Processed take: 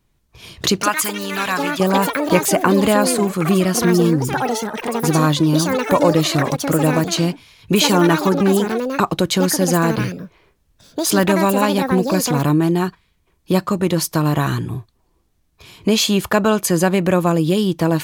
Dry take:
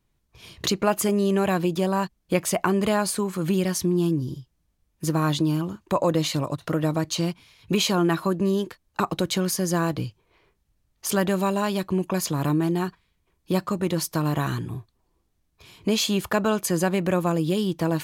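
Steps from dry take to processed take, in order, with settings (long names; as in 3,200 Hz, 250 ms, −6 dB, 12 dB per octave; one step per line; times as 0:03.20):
0:00.81–0:01.80: low shelf with overshoot 780 Hz −12.5 dB, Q 1.5
delay with pitch and tempo change per echo 386 ms, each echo +7 semitones, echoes 3, each echo −6 dB
level +7 dB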